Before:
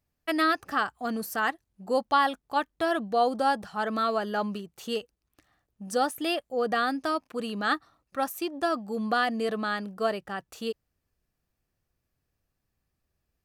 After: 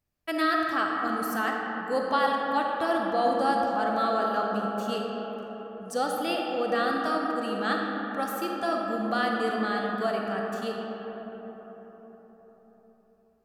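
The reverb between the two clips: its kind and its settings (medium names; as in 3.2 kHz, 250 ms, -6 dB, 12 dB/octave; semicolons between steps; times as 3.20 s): algorithmic reverb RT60 4.9 s, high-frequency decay 0.35×, pre-delay 5 ms, DRR -1 dB; trim -3 dB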